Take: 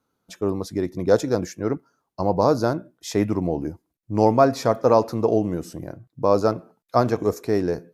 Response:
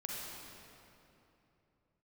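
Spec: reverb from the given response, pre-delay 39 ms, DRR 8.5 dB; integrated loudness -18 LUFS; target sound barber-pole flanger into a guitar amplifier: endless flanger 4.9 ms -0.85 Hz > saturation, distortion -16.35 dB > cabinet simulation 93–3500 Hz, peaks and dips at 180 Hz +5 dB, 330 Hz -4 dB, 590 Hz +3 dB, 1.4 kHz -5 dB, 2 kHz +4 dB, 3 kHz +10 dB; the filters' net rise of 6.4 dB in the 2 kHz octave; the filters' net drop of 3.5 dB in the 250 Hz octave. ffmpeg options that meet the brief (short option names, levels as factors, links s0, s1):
-filter_complex "[0:a]equalizer=f=250:t=o:g=-4.5,equalizer=f=2000:t=o:g=7.5,asplit=2[s0][s1];[1:a]atrim=start_sample=2205,adelay=39[s2];[s1][s2]afir=irnorm=-1:irlink=0,volume=0.335[s3];[s0][s3]amix=inputs=2:normalize=0,asplit=2[s4][s5];[s5]adelay=4.9,afreqshift=-0.85[s6];[s4][s6]amix=inputs=2:normalize=1,asoftclip=threshold=0.2,highpass=93,equalizer=f=180:t=q:w=4:g=5,equalizer=f=330:t=q:w=4:g=-4,equalizer=f=590:t=q:w=4:g=3,equalizer=f=1400:t=q:w=4:g=-5,equalizer=f=2000:t=q:w=4:g=4,equalizer=f=3000:t=q:w=4:g=10,lowpass=f=3500:w=0.5412,lowpass=f=3500:w=1.3066,volume=2.82"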